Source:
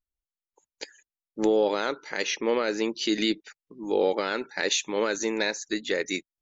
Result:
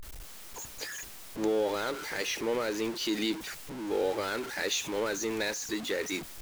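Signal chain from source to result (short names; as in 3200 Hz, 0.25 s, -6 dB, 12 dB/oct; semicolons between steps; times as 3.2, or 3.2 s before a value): zero-crossing step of -27 dBFS; mismatched tape noise reduction decoder only; gain -7.5 dB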